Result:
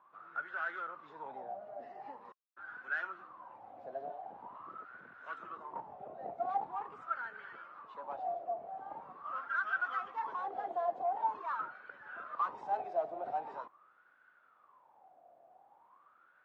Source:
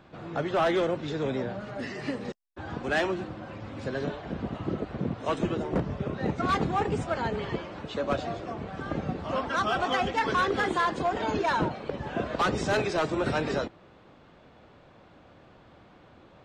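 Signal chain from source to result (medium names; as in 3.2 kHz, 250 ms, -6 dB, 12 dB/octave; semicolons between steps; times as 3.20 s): saturation -21.5 dBFS, distortion -19 dB; wah-wah 0.44 Hz 690–1500 Hz, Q 14; trim +5.5 dB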